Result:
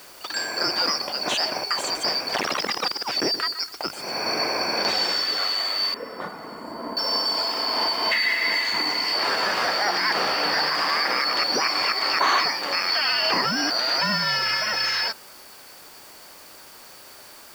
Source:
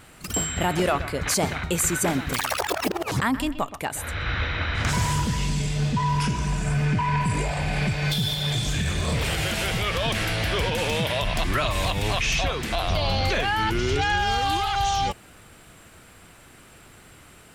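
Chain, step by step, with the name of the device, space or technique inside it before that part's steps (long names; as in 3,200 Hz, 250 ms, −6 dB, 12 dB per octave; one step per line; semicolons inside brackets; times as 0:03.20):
split-band scrambled radio (band-splitting scrambler in four parts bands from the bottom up 2341; band-pass filter 320–3,100 Hz; white noise bed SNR 23 dB)
0:05.94–0:06.97: drawn EQ curve 120 Hz 0 dB, 170 Hz +8 dB, 1,900 Hz −7 dB, 5,000 Hz −26 dB, 7,800 Hz −12 dB
level +6.5 dB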